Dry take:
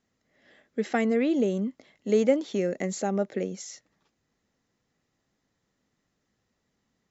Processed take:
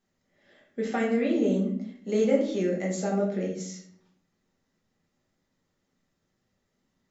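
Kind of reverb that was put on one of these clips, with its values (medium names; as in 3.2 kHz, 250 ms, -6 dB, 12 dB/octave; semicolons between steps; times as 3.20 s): simulated room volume 100 m³, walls mixed, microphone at 1.2 m; trim -5.5 dB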